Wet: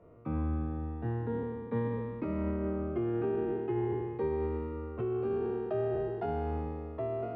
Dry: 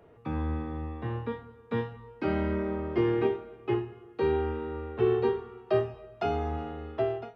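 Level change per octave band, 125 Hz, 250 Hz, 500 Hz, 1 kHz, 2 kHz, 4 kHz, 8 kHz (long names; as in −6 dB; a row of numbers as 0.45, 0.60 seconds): −1.0 dB, −2.0 dB, −3.5 dB, −5.0 dB, −9.0 dB, below −10 dB, can't be measured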